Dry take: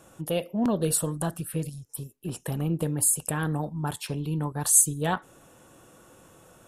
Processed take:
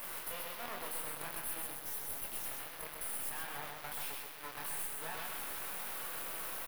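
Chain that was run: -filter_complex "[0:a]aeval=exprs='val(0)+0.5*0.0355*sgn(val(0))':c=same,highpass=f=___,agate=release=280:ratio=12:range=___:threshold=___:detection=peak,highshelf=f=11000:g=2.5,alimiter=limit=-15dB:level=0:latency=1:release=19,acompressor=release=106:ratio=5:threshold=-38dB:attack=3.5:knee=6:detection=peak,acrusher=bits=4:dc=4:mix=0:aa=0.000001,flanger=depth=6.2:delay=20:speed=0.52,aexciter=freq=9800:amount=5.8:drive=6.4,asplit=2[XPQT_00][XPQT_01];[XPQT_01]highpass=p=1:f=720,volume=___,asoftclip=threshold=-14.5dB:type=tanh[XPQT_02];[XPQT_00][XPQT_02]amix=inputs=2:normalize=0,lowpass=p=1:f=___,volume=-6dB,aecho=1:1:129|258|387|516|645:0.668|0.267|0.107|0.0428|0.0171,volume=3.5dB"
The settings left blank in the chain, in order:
830, -7dB, -38dB, 7dB, 1700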